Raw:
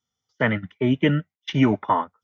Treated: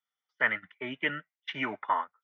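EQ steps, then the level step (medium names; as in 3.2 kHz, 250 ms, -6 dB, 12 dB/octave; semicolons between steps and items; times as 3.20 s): band-pass filter 1.8 kHz, Q 1.4; distance through air 59 m; 0.0 dB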